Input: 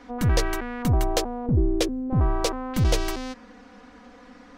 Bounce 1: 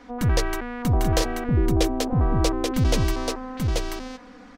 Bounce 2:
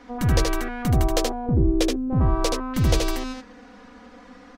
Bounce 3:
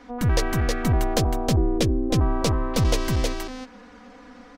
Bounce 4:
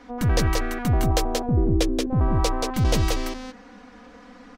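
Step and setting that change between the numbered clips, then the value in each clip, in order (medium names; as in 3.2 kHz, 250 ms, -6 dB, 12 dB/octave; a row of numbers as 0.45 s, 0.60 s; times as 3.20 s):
delay, time: 834 ms, 77 ms, 317 ms, 180 ms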